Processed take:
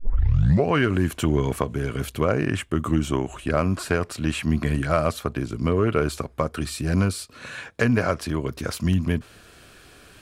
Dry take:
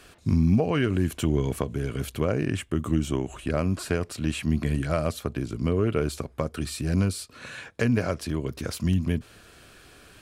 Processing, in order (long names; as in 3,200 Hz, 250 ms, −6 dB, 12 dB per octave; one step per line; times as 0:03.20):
turntable start at the beginning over 0.68 s
dynamic equaliser 1,200 Hz, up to +7 dB, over −42 dBFS, Q 0.8
in parallel at −11.5 dB: hard clipping −15 dBFS, distortion −18 dB